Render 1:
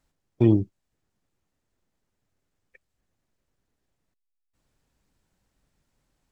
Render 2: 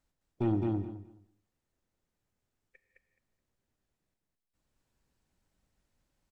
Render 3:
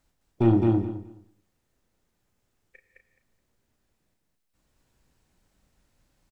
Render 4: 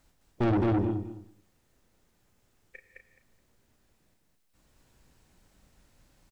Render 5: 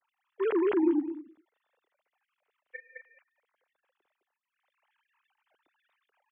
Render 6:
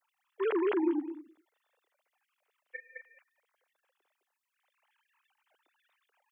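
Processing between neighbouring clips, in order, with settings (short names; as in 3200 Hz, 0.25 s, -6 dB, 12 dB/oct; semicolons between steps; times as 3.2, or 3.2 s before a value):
soft clip -16.5 dBFS, distortion -10 dB; feedback echo 0.212 s, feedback 18%, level -3 dB; non-linear reverb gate 0.22 s flat, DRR 11 dB; gain -7 dB
doubler 35 ms -8.5 dB; gain +8.5 dB
in parallel at -1 dB: limiter -21 dBFS, peak gain reduction 9.5 dB; on the sum: soft clip -22.5 dBFS, distortion -8 dB
sine-wave speech
tone controls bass -14 dB, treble +7 dB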